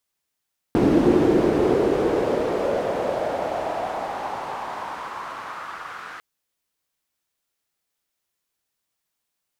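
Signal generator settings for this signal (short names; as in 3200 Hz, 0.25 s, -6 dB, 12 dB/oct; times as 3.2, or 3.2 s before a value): swept filtered noise pink, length 5.45 s bandpass, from 300 Hz, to 1400 Hz, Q 3, exponential, gain ramp -21.5 dB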